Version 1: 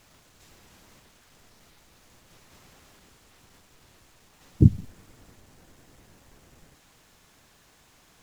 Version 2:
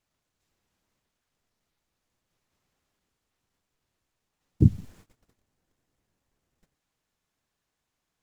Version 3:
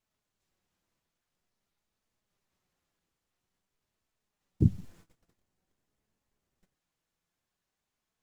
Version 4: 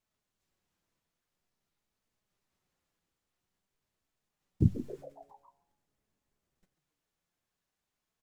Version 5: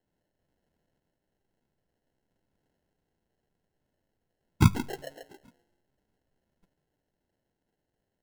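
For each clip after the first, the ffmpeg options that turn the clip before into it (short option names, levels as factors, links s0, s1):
-af "agate=range=0.0891:threshold=0.00355:ratio=16:detection=peak,volume=0.75"
-af "flanger=delay=4.5:depth=1.6:regen=73:speed=0.49:shape=triangular"
-filter_complex "[0:a]asplit=7[s0][s1][s2][s3][s4][s5][s6];[s1]adelay=137,afreqshift=140,volume=0.178[s7];[s2]adelay=274,afreqshift=280,volume=0.101[s8];[s3]adelay=411,afreqshift=420,volume=0.0575[s9];[s4]adelay=548,afreqshift=560,volume=0.0331[s10];[s5]adelay=685,afreqshift=700,volume=0.0188[s11];[s6]adelay=822,afreqshift=840,volume=0.0107[s12];[s0][s7][s8][s9][s10][s11][s12]amix=inputs=7:normalize=0,volume=0.841"
-af "acrusher=samples=37:mix=1:aa=0.000001,volume=1.78"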